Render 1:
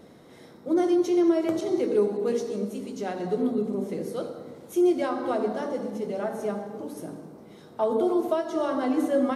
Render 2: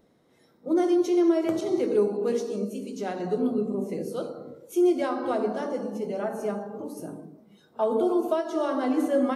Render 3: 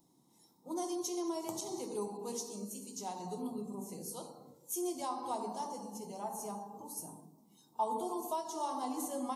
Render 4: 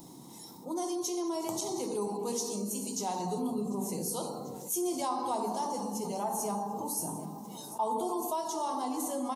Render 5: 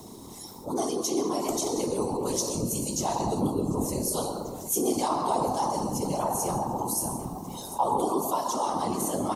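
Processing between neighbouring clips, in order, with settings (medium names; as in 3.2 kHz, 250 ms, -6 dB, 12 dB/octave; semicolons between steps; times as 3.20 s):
spectral noise reduction 13 dB
FFT filter 170 Hz 0 dB, 310 Hz -9 dB, 600 Hz -12 dB, 920 Hz +7 dB, 1.5 kHz -19 dB, 6.9 kHz +11 dB; band noise 130–330 Hz -63 dBFS; bass shelf 200 Hz -10 dB; trim -4.5 dB
gain riding 2 s; feedback delay 743 ms, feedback 51%, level -23 dB; level flattener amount 50%
whisper effect; on a send at -15 dB: reverberation RT60 0.55 s, pre-delay 117 ms; on the sum: trim +5.5 dB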